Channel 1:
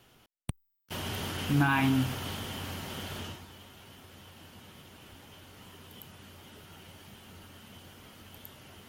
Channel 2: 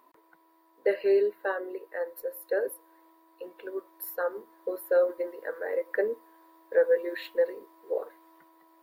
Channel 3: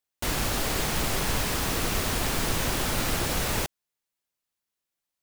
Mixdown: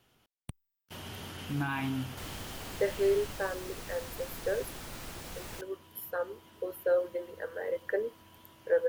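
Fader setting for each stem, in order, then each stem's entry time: −7.5, −4.0, −16.5 decibels; 0.00, 1.95, 1.95 seconds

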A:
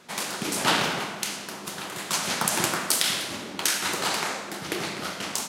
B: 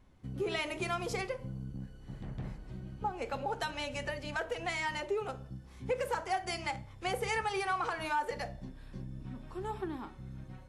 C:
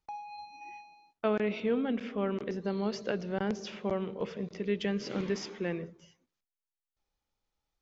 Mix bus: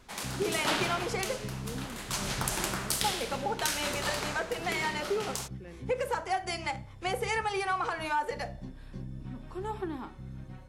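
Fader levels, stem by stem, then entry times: −7.5, +2.5, −14.5 decibels; 0.00, 0.00, 0.00 seconds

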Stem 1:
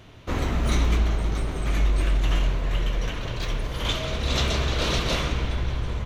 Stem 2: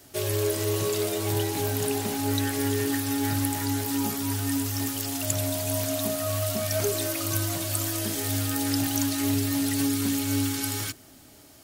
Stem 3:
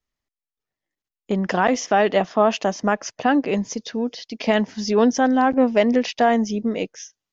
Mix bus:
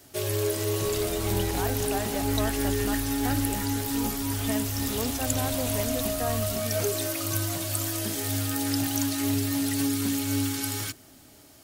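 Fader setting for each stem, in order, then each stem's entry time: −14.0, −1.0, −16.0 decibels; 0.55, 0.00, 0.00 seconds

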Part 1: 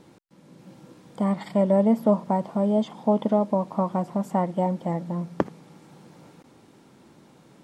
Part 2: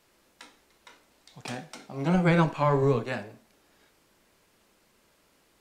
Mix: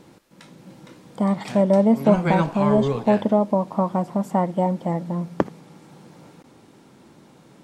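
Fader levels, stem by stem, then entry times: +3.0, 0.0 decibels; 0.00, 0.00 seconds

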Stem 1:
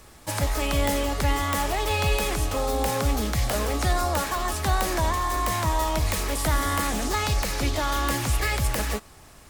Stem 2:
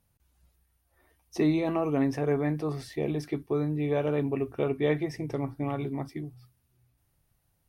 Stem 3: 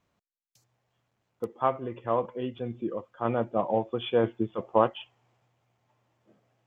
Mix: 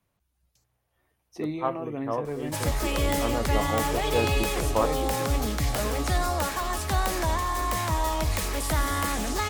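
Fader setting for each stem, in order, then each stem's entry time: −2.0, −7.0, −3.0 decibels; 2.25, 0.00, 0.00 seconds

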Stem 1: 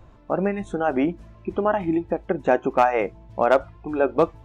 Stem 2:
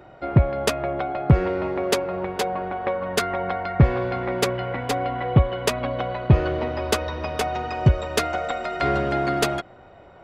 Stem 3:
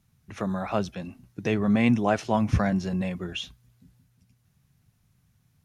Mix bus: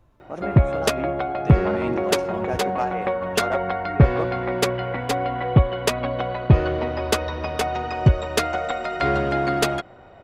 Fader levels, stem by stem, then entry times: −10.0, +1.0, −10.0 decibels; 0.00, 0.20, 0.00 seconds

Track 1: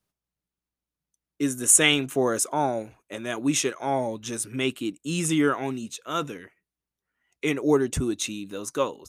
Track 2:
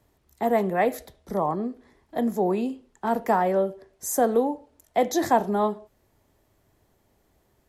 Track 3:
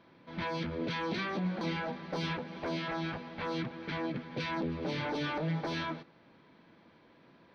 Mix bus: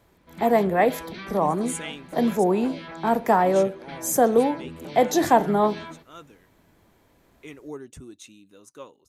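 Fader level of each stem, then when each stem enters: −16.5, +3.0, −3.0 decibels; 0.00, 0.00, 0.00 seconds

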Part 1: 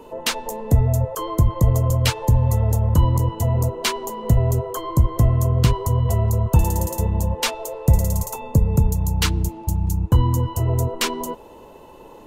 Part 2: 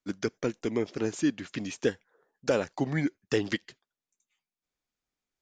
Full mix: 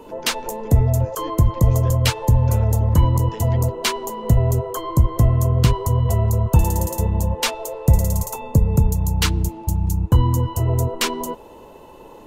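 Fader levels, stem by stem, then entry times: +1.0, −11.5 decibels; 0.00, 0.00 seconds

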